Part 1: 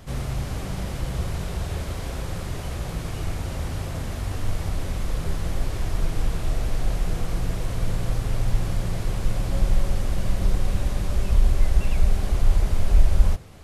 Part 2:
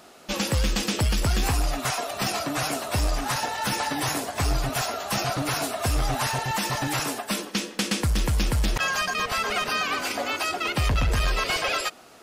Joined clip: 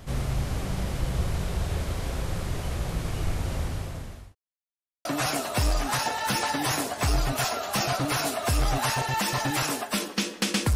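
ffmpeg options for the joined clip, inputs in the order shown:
-filter_complex "[0:a]apad=whole_dur=10.75,atrim=end=10.75,asplit=2[a][b];[a]atrim=end=4.35,asetpts=PTS-STARTPTS,afade=t=out:st=3.56:d=0.79[c];[b]atrim=start=4.35:end=5.05,asetpts=PTS-STARTPTS,volume=0[d];[1:a]atrim=start=2.42:end=8.12,asetpts=PTS-STARTPTS,afade=t=in:d=0.004:c=hsin[e];[c][d][e]concat=n=3:v=0:a=1"

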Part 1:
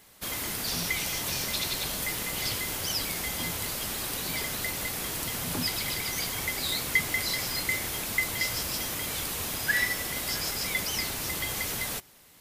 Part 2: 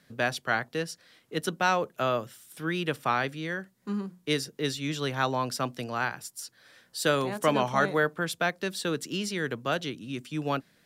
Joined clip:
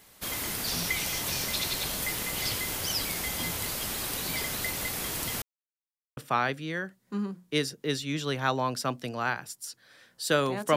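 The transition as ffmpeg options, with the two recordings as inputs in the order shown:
-filter_complex "[0:a]apad=whole_dur=10.76,atrim=end=10.76,asplit=2[a][b];[a]atrim=end=5.42,asetpts=PTS-STARTPTS,afade=t=out:st=5.416:d=0.004:c=hsin[c];[b]atrim=start=5.42:end=6.17,asetpts=PTS-STARTPTS,volume=0[d];[1:a]atrim=start=2.92:end=7.51,asetpts=PTS-STARTPTS,afade=t=in:d=0.004:c=hsin[e];[c][d][e]concat=n=3:v=0:a=1"

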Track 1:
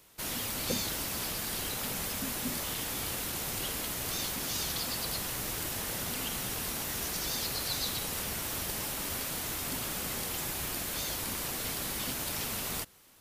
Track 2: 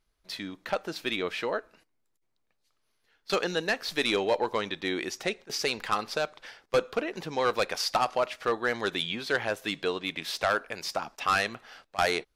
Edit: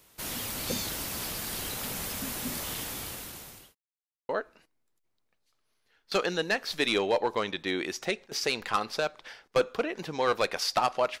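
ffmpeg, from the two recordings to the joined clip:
-filter_complex "[0:a]apad=whole_dur=11.2,atrim=end=11.2,asplit=2[a][b];[a]atrim=end=3.75,asetpts=PTS-STARTPTS,afade=t=out:st=2.77:d=0.98[c];[b]atrim=start=3.75:end=4.29,asetpts=PTS-STARTPTS,volume=0[d];[1:a]atrim=start=1.47:end=8.38,asetpts=PTS-STARTPTS,afade=t=in:d=0.004:c=hsin[e];[c][d][e]concat=n=3:v=0:a=1"

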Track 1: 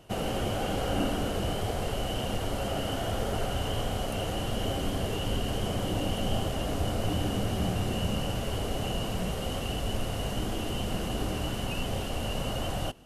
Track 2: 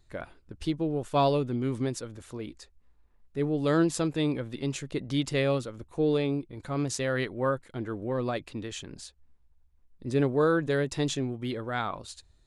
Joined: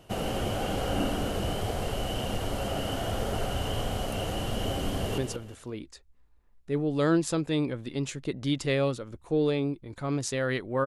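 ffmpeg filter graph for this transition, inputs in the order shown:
-filter_complex "[0:a]apad=whole_dur=10.86,atrim=end=10.86,atrim=end=5.182[a];[1:a]atrim=start=1.848:end=7.53[b];[a][b]acrossfade=d=0.004:c1=hsin:c2=hsin,asplit=2[c][d];[d]afade=t=in:st=4.93:d=0.01,afade=t=out:st=5.18:d=0.01,aecho=0:1:180|360|540:0.421697|0.105424|0.026356[e];[c][e]amix=inputs=2:normalize=0"

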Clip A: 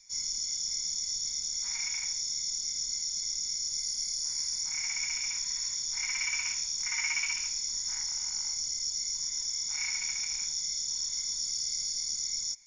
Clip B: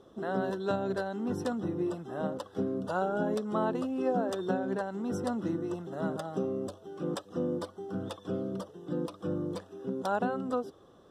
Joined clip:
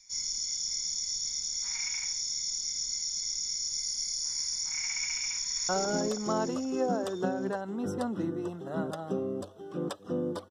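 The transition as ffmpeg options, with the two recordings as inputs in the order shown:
-filter_complex "[0:a]apad=whole_dur=10.5,atrim=end=10.5,atrim=end=5.692[a];[1:a]atrim=start=2.948:end=7.76[b];[a][b]acrossfade=d=0.004:c1=hsin:c2=hsin,asplit=2[c][d];[d]afade=t=in:st=5.39:d=0.01,afade=t=out:st=5.69:d=0.01,aecho=0:1:160|320|480|640|800|960|1120|1280|1440|1600|1760|1920:0.668344|0.501258|0.375943|0.281958|0.211468|0.158601|0.118951|0.0892131|0.0669099|0.0501824|0.0376368|0.0282276[e];[c][e]amix=inputs=2:normalize=0"

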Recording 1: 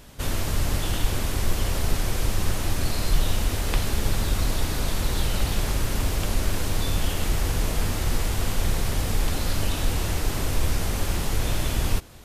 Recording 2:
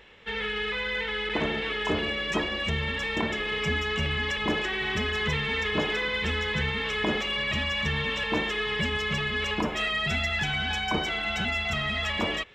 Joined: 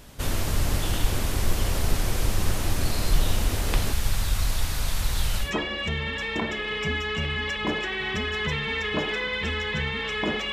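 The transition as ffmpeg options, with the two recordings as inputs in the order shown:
-filter_complex "[0:a]asettb=1/sr,asplit=3[a][b][c];[a]atrim=end=3.924[d];[b]atrim=start=3.92:end=5.53,asetpts=PTS-STARTPTS,afade=t=in:d=0.004:c=qsin,afade=t=out:st=1.606:d=0.004:c=qsin,equalizer=f=330:w=0.68:g=-11[e];[c]atrim=start=5.526[f];[d][e]acrossfade=d=0.004:c1=hsin:c2=qsin[g];[g][f]acrossfade=d=0.004:c1=qsin:c2=hsin,apad=whole_dur=10.52,atrim=end=10.52,atrim=end=5.53,asetpts=PTS-STARTPTS[h];[1:a]atrim=start=2.18:end=7.33,asetpts=PTS-STARTPTS[i];[h][i]acrossfade=d=0.16:c1=tri:c2=tri"

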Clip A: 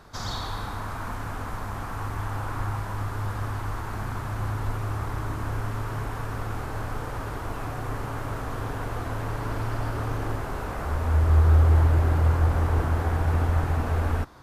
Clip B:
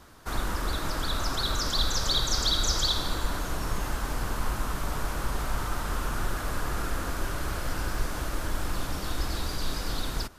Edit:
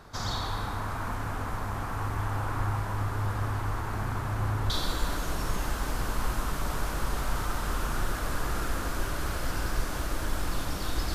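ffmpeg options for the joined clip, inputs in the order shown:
-filter_complex "[0:a]apad=whole_dur=11.14,atrim=end=11.14,atrim=end=4.702[a];[1:a]atrim=start=2.918:end=9.36[b];[a][b]acrossfade=d=0.004:c1=hsin:c2=hsin"

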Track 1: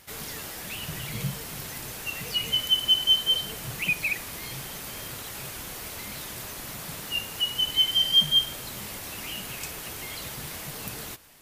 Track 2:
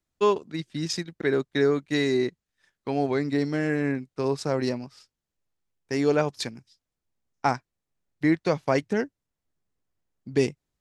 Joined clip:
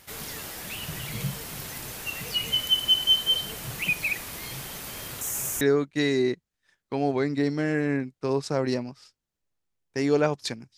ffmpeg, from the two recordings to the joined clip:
-filter_complex "[0:a]asettb=1/sr,asplit=3[a][b][c];[a]atrim=end=5.214[d];[b]atrim=start=5.21:end=5.61,asetpts=PTS-STARTPTS,afade=t=in:d=0.004:c=qsin,afade=t=out:st=0.396:d=0.004:c=qsin,highshelf=f=5.4k:t=q:w=3:g=8[e];[c]atrim=start=5.606[f];[d][e]acrossfade=d=0.004:c1=hsin:c2=qsin[g];[g][f]acrossfade=d=0.004:c1=qsin:c2=hsin,apad=whole_dur=10.77,atrim=end=10.77,atrim=end=5.612[h];[1:a]atrim=start=1.558:end=6.72[i];[h][i]acrossfade=d=0.004:c1=hsin:c2=hsin"

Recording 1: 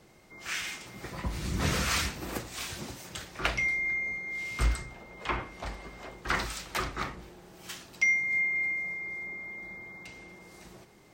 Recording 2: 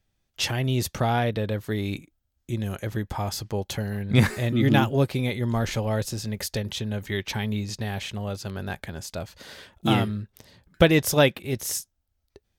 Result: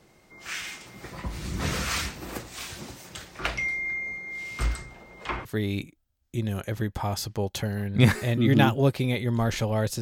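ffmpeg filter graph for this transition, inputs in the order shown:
-filter_complex "[0:a]apad=whole_dur=10.01,atrim=end=10.01,atrim=end=5.452[a];[1:a]atrim=start=1.598:end=6.16[b];[a][b]acrossfade=d=0.004:c1=hsin:c2=hsin"

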